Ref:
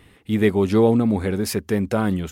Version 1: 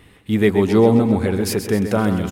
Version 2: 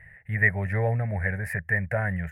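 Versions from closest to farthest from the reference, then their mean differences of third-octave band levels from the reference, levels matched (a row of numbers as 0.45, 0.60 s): 1, 2; 3.0, 8.0 dB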